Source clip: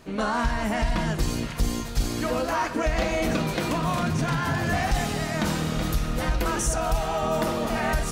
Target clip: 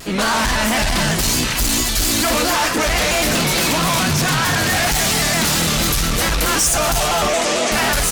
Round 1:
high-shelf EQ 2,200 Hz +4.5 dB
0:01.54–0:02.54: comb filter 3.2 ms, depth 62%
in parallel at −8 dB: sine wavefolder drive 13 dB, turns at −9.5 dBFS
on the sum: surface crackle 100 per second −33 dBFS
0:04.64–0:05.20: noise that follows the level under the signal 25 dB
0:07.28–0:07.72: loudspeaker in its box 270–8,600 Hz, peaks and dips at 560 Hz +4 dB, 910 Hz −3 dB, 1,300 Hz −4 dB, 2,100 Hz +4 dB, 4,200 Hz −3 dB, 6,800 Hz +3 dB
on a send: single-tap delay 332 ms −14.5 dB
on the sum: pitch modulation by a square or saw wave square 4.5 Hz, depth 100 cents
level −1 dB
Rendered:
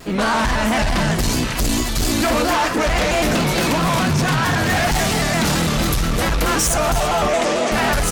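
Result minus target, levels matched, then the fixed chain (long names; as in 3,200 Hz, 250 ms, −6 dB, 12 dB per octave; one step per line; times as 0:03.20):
4,000 Hz band −3.0 dB
high-shelf EQ 2,200 Hz +14.5 dB
0:01.54–0:02.54: comb filter 3.2 ms, depth 62%
in parallel at −8 dB: sine wavefolder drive 13 dB, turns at −9.5 dBFS
on the sum: surface crackle 100 per second −33 dBFS
0:04.64–0:05.20: noise that follows the level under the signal 25 dB
0:07.28–0:07.72: loudspeaker in its box 270–8,600 Hz, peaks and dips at 560 Hz +4 dB, 910 Hz −3 dB, 1,300 Hz −4 dB, 2,100 Hz +4 dB, 4,200 Hz −3 dB, 6,800 Hz +3 dB
on a send: single-tap delay 332 ms −14.5 dB
on the sum: pitch modulation by a square or saw wave square 4.5 Hz, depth 100 cents
level −1 dB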